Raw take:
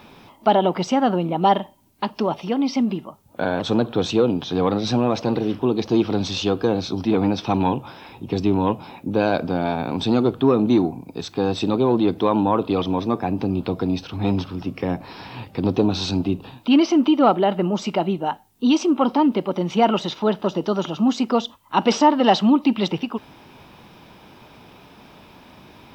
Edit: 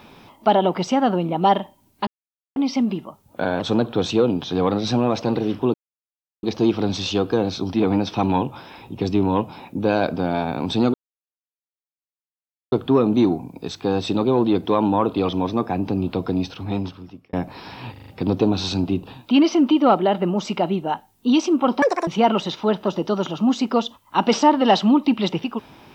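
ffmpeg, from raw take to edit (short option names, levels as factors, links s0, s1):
-filter_complex "[0:a]asplit=12[s0][s1][s2][s3][s4][s5][s6][s7][s8][s9][s10][s11];[s0]atrim=end=2.07,asetpts=PTS-STARTPTS,afade=t=out:st=2.066:d=0.004:c=hsin[s12];[s1]atrim=start=2.07:end=2.56,asetpts=PTS-STARTPTS,volume=0[s13];[s2]atrim=start=2.56:end=5.74,asetpts=PTS-STARTPTS,afade=t=in:d=0.004:c=hsin,afade=t=out:st=3.176:d=0.004:c=hsin,apad=pad_dur=0.69[s14];[s3]atrim=start=5.74:end=10.25,asetpts=PTS-STARTPTS,afade=t=in:d=0.004:c=hsin,afade=t=out:st=4.506:d=0.004:c=hsin,apad=pad_dur=1.78[s15];[s4]atrim=start=10.25:end=14.86,asetpts=PTS-STARTPTS,afade=t=in:d=0.004:c=hsin,afade=t=out:st=3.73:d=0.88[s16];[s5]atrim=start=14.86:end=15.492,asetpts=PTS-STARTPTS,afade=t=in:d=0.004:c=hsin[s17];[s6]atrim=start=15.448:end=15.492[s18];[s7]atrim=start=15.448:end=15.492[s19];[s8]atrim=start=15.448:end=15.492[s20];[s9]atrim=start=15.448:end=19.194[s21];[s10]atrim=start=19.19:end=19.66,asetpts=PTS-STARTPTS,asetrate=82026,aresample=44100[s22];[s11]atrim=start=19.656[s23];[s12][s13][s14][s15][s16][s17]concat=n=6:v=0:a=1[s24];[s24][s18]acrossfade=d=0.004:c1=hsin:c2=hsin[s25];[s25][s19]acrossfade=d=0.004:c1=hsin:c2=hsin[s26];[s26][s20]acrossfade=d=0.004:c1=hsin:c2=hsin[s27];[s27][s21]acrossfade=d=0.004:c1=hsin:c2=hsin[s28];[s28][s22]acrossfade=d=0.004:c1=hsin:c2=hsin[s29];[s29][s23]acrossfade=d=0.004:c1=hsin:c2=hsin"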